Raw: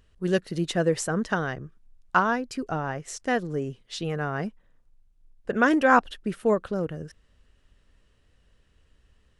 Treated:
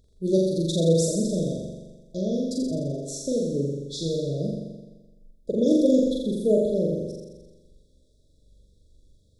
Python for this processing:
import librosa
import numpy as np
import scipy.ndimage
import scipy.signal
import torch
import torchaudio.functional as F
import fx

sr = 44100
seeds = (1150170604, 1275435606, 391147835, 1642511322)

y = fx.brickwall_bandstop(x, sr, low_hz=660.0, high_hz=3300.0)
y = fx.room_flutter(y, sr, wall_m=7.3, rt60_s=1.2)